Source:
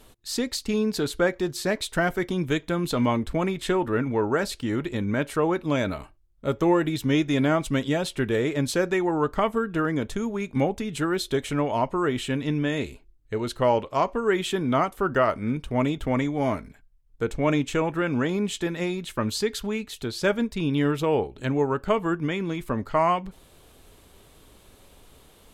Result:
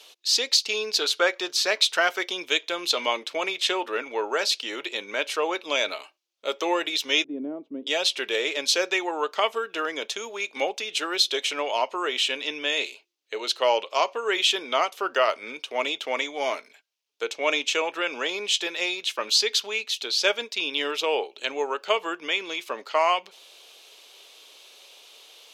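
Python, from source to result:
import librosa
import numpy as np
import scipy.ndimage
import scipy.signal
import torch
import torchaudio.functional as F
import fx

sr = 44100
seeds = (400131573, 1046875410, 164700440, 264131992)

y = fx.peak_eq(x, sr, hz=1300.0, db=5.5, octaves=0.77, at=(1.01, 2.22))
y = fx.lowpass_res(y, sr, hz=260.0, q=2.8, at=(7.24, 7.87))
y = scipy.signal.sosfilt(scipy.signal.butter(4, 440.0, 'highpass', fs=sr, output='sos'), y)
y = fx.band_shelf(y, sr, hz=3900.0, db=12.0, octaves=1.7)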